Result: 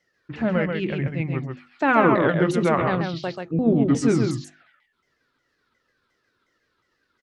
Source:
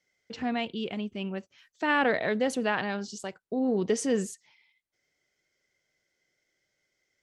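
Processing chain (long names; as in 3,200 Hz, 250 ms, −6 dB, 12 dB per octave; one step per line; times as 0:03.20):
pitch shifter swept by a sawtooth −8.5 semitones, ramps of 359 ms
high-shelf EQ 2,700 Hz −8 dB
mains-hum notches 50/100/150/200/250/300/350 Hz
tape wow and flutter 27 cents
single-tap delay 136 ms −4.5 dB
level +9 dB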